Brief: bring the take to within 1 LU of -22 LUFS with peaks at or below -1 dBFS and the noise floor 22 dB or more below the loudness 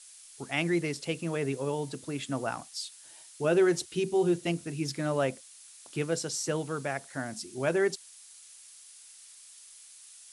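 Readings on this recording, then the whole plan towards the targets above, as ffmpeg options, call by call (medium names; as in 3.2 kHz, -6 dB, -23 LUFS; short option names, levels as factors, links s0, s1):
noise floor -52 dBFS; noise floor target -53 dBFS; loudness -31.0 LUFS; peak level -13.5 dBFS; loudness target -22.0 LUFS
-> -af "afftdn=nr=6:nf=-52"
-af "volume=2.82"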